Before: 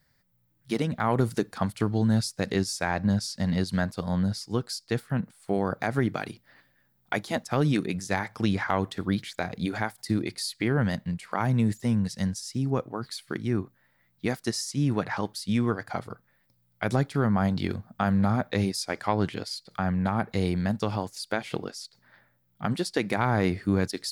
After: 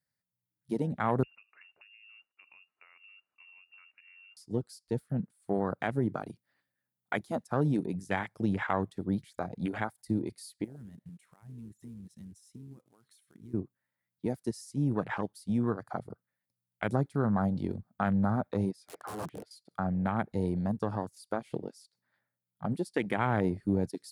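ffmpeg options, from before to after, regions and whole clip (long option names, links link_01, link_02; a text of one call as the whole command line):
ffmpeg -i in.wav -filter_complex "[0:a]asettb=1/sr,asplit=3[link_01][link_02][link_03];[link_01]atrim=end=1.234[link_04];[link_02]atrim=start=1.23:end=4.37,asetpts=PTS-STARTPTS,afade=type=in:duration=0.004:curve=qsin,afade=type=out:start_time=3.136:duration=0.004:curve=qsin,acompressor=threshold=-33dB:ratio=12:attack=3.2:release=140:knee=1:detection=peak,lowpass=frequency=2500:width_type=q:width=0.5098,lowpass=frequency=2500:width_type=q:width=0.6013,lowpass=frequency=2500:width_type=q:width=0.9,lowpass=frequency=2500:width_type=q:width=2.563,afreqshift=-2900[link_05];[link_03]atrim=start=4.366[link_06];[link_04][link_05]acrossfade=duration=0.004:curve1=hsin:curve2=qsin[link_07];[link_07][link_06]acrossfade=duration=0.004:curve1=qsin:curve2=hsin,asettb=1/sr,asplit=3[link_08][link_09][link_10];[link_08]atrim=end=10.644[link_11];[link_09]atrim=start=10.64:end=13.54,asetpts=PTS-STARTPTS,afade=type=in:duration=0.004:curve=qsin,afade=type=out:start_time=2.896:duration=0.004:curve=qsin,acompressor=threshold=-42dB:ratio=4:attack=3.2:release=140:knee=1:detection=peak,asuperstop=centerf=4700:order=4:qfactor=7.1,acrusher=bits=4:mode=log:mix=0:aa=0.000001[link_12];[link_10]atrim=start=13.536[link_13];[link_11][link_12]acrossfade=duration=0.004:curve1=hsin:curve2=qsin[link_14];[link_14][link_13]acrossfade=duration=0.004:curve1=qsin:curve2=hsin,asettb=1/sr,asplit=3[link_15][link_16][link_17];[link_15]atrim=end=18.714[link_18];[link_16]atrim=start=18.71:end=19.51,asetpts=PTS-STARTPTS,afade=type=in:duration=0.004:curve=qsin,afade=type=out:start_time=0.796:duration=0.004:curve=qsin,bass=frequency=250:gain=-4,treble=frequency=4000:gain=-15,aecho=1:1:6.5:0.31,atrim=end_sample=35280,aeval=exprs='(mod(20*val(0)+1,2)-1)/20':channel_layout=same[link_19];[link_17]atrim=start=19.506[link_20];[link_18][link_19]acrossfade=duration=0.004:curve1=hsin:curve2=qsin[link_21];[link_21][link_20]acrossfade=duration=0.004:curve1=qsin:curve2=hsin,highpass=91,afwtdn=0.0251,equalizer=frequency=10000:width_type=o:width=0.77:gain=10,volume=-3.5dB" out.wav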